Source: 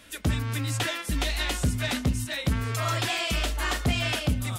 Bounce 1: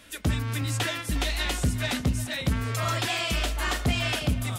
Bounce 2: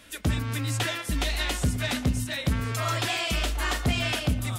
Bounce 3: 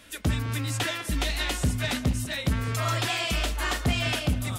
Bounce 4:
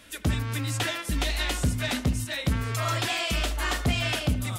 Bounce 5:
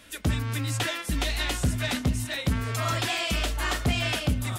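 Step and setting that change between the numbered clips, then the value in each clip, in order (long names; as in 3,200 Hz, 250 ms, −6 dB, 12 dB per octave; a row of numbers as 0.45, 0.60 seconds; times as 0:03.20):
tape delay, delay time: 357, 118, 201, 76, 843 milliseconds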